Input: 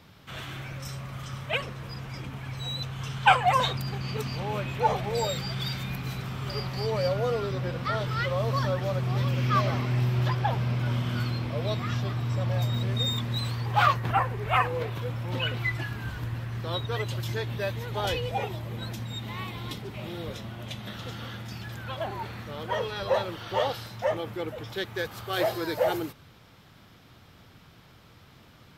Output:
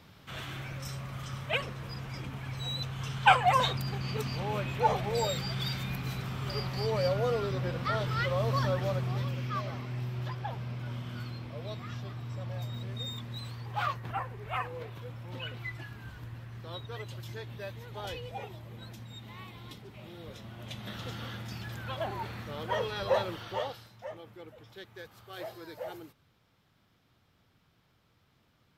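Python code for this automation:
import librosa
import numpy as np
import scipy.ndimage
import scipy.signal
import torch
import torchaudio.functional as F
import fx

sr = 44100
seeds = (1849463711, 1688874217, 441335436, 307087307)

y = fx.gain(x, sr, db=fx.line((8.88, -2.0), (9.55, -10.5), (20.18, -10.5), (20.94, -2.0), (23.35, -2.0), (23.93, -15.0)))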